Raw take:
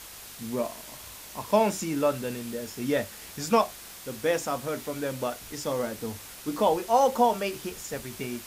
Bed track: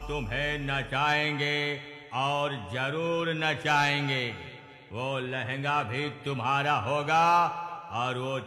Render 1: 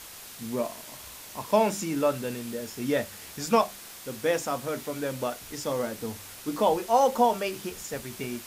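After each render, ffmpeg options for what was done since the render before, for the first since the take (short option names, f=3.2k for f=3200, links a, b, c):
-af "bandreject=f=50:t=h:w=4,bandreject=f=100:t=h:w=4,bandreject=f=150:t=h:w=4,bandreject=f=200:t=h:w=4"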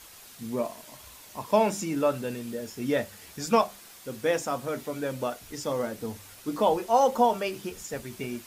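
-af "afftdn=nr=6:nf=-45"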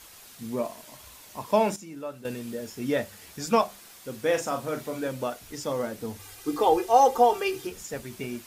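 -filter_complex "[0:a]asettb=1/sr,asplit=3[a][b][c];[a]atrim=end=4.254[d];[b]atrim=start=4.25:end=5.08,asetpts=PTS-STARTPTS,afade=t=in:d=0.004:c=qsin,afade=t=out:st=0.826:d=0.004:c=qsin,asplit=2[e][f];[f]adelay=39,volume=-6.5dB[g];[e][g]amix=inputs=2:normalize=0,atrim=end_sample=36603[h];[c]atrim=start=5.076[i];[d][h]acrossfade=d=0.004:c1=hsin:c2=qsin[j];[j][i]acrossfade=d=0.004:c1=qsin:c2=hsin,asettb=1/sr,asplit=3[k][l][m];[k]atrim=end=6.194[n];[l]atrim=start=6.19:end=7.67,asetpts=PTS-STARTPTS,afade=t=in:d=0.004:c=qsin,afade=t=out:st=1.476:d=0.004:c=qsin,aecho=1:1:2.5:0.93,atrim=end_sample=65268[o];[m]atrim=start=7.666[p];[n][o]acrossfade=d=0.004:c1=hsin:c2=qsin[q];[q][p]acrossfade=d=0.004:c1=qsin:c2=hsin,asplit=3[r][s][t];[r]atrim=end=1.762[u];[s]atrim=start=1.758:end=2.252,asetpts=PTS-STARTPTS,volume=-11.5dB[v];[t]atrim=start=2.248[w];[u][v]acrossfade=d=0.004:c1=hsin:c2=hsin[x];[x][w]acrossfade=d=0.004:c1=hsin:c2=hsin"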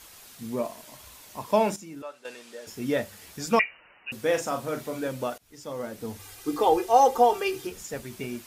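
-filter_complex "[0:a]asettb=1/sr,asplit=3[a][b][c];[a]atrim=end=2.024[d];[b]atrim=start=2.02:end=2.67,asetpts=PTS-STARTPTS,afade=t=in:d=0.004:c=qsin,afade=t=out:st=0.646:d=0.004:c=qsin,highpass=650,lowpass=7.9k[e];[c]atrim=start=2.666[f];[d][e]acrossfade=d=0.004:c1=hsin:c2=qsin[g];[g][f]acrossfade=d=0.004:c1=qsin:c2=hsin,asettb=1/sr,asplit=3[h][i][j];[h]atrim=end=3.594[k];[i]atrim=start=3.59:end=4.12,asetpts=PTS-STARTPTS,afade=t=in:d=0.004:c=qsin,afade=t=out:st=0.526:d=0.004:c=qsin,lowpass=f=2.6k:t=q:w=0.5098,lowpass=f=2.6k:t=q:w=0.6013,lowpass=f=2.6k:t=q:w=0.9,lowpass=f=2.6k:t=q:w=2.563,afreqshift=-3000[l];[j]atrim=start=4.116[m];[k][l]acrossfade=d=0.004:c1=hsin:c2=qsin[n];[n][m]acrossfade=d=0.004:c1=qsin:c2=hsin,asplit=2[o][p];[o]atrim=end=5.38,asetpts=PTS-STARTPTS,afade=t=out:st=5.376:d=0.004:c=hsin:silence=0.0794328[q];[p]atrim=start=5.38,asetpts=PTS-STARTPTS,afade=t=in:d=0.75:silence=0.0794328[r];[q][r]concat=n=2:v=0:a=1"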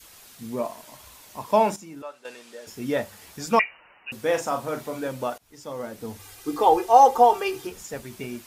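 -af "adynamicequalizer=threshold=0.0141:dfrequency=910:dqfactor=1.5:tfrequency=910:tqfactor=1.5:attack=5:release=100:ratio=0.375:range=3:mode=boostabove:tftype=bell"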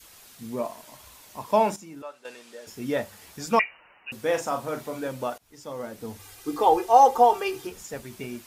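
-af "volume=-1.5dB"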